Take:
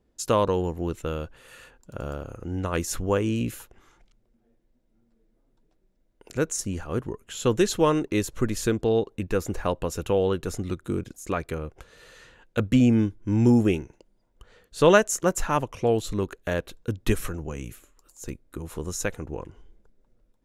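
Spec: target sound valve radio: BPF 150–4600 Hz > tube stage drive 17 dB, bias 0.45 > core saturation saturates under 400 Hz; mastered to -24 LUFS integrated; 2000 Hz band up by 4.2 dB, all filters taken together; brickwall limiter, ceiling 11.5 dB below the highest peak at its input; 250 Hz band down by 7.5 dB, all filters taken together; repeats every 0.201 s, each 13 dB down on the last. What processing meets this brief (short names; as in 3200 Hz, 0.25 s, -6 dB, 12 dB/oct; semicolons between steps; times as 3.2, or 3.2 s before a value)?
bell 250 Hz -9 dB; bell 2000 Hz +6.5 dB; limiter -15 dBFS; BPF 150–4600 Hz; feedback echo 0.201 s, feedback 22%, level -13 dB; tube stage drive 17 dB, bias 0.45; core saturation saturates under 400 Hz; gain +11 dB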